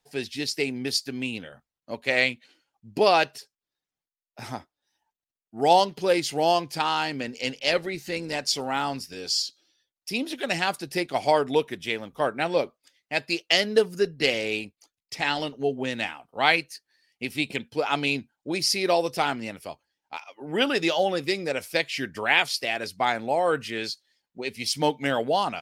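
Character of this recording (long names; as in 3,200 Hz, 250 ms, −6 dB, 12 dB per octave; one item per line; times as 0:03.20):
background noise floor −92 dBFS
spectral slope −3.0 dB per octave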